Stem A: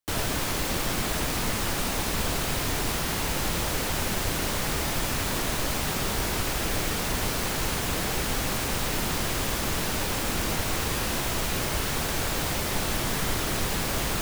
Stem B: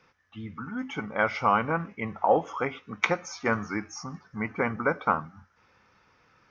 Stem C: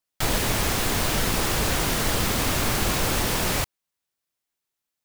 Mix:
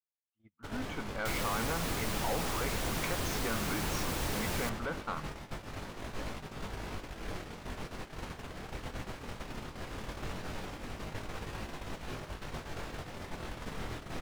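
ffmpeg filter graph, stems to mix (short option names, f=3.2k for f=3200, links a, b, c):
-filter_complex "[0:a]aemphasis=mode=reproduction:type=75kf,flanger=delay=19:depth=6.5:speed=0.18,adelay=550,volume=-3.5dB[a];[1:a]volume=-2.5dB[b];[2:a]adelay=1050,volume=-13dB[c];[a][b]amix=inputs=2:normalize=0,aeval=exprs='(tanh(12.6*val(0)+0.25)-tanh(0.25))/12.6':c=same,alimiter=level_in=4dB:limit=-24dB:level=0:latency=1:release=57,volume=-4dB,volume=0dB[d];[c][d]amix=inputs=2:normalize=0,agate=range=-44dB:threshold=-36dB:ratio=16:detection=peak"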